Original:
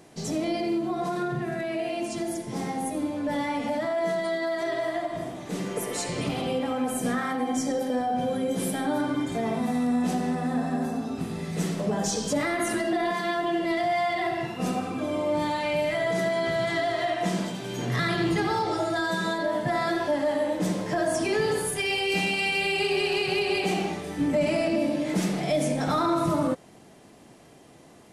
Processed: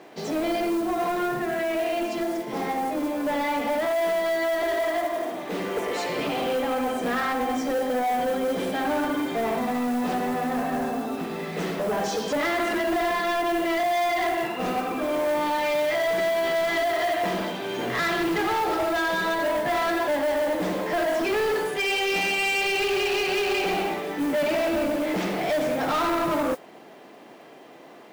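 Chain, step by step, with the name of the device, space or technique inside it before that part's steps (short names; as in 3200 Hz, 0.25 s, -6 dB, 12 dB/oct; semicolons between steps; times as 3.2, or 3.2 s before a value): 4.63–5.32 steep high-pass 230 Hz 36 dB/oct; carbon microphone (BPF 340–3200 Hz; soft clip -29 dBFS, distortion -11 dB; modulation noise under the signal 21 dB); gain +8 dB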